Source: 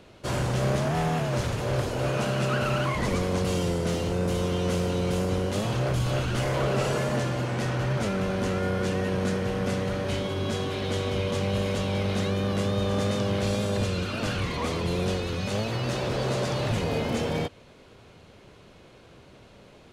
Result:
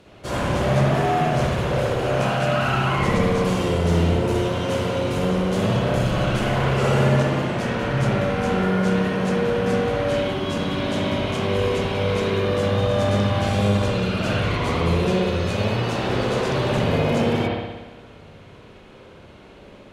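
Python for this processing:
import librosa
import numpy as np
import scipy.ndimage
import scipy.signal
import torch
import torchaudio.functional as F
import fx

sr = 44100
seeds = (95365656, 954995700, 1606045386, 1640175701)

y = fx.cheby_harmonics(x, sr, harmonics=(4,), levels_db=(-25,), full_scale_db=-15.5)
y = fx.rev_spring(y, sr, rt60_s=1.2, pass_ms=(59,), chirp_ms=50, drr_db=-5.5)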